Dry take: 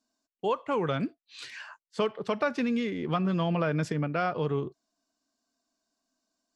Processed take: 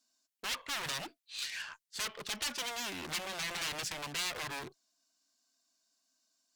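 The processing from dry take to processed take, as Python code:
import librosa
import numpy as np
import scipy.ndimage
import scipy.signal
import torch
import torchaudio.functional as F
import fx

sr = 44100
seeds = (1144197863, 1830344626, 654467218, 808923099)

y = 10.0 ** (-31.5 / 20.0) * (np.abs((x / 10.0 ** (-31.5 / 20.0) + 3.0) % 4.0 - 2.0) - 1.0)
y = fx.cheby_harmonics(y, sr, harmonics=(6,), levels_db=(-20,), full_scale_db=-31.5)
y = fx.tilt_shelf(y, sr, db=-8.5, hz=1400.0)
y = y * 10.0 ** (-1.5 / 20.0)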